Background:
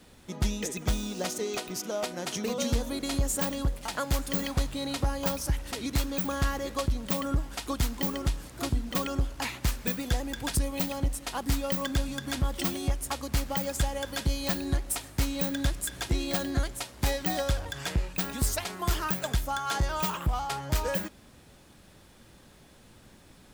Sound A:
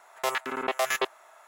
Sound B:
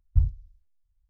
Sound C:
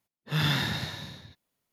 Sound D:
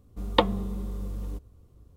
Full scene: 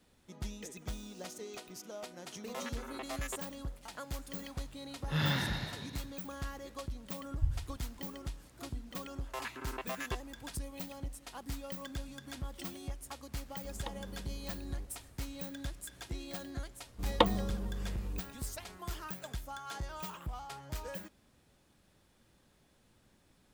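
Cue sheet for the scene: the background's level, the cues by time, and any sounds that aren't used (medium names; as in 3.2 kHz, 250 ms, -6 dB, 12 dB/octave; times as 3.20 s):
background -13 dB
2.31 s: add A -15.5 dB
4.80 s: add C -4.5 dB + treble shelf 4.7 kHz -7.5 dB
7.26 s: add B -10.5 dB + bit-crushed delay 131 ms, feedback 55%, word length 7-bit, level -10 dB
9.10 s: add A -15 dB + small resonant body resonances 300/1000/1600/2700 Hz, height 10 dB
13.48 s: add D -6 dB + compression 3:1, threshold -38 dBFS
16.82 s: add D -4.5 dB + hard clipper -5.5 dBFS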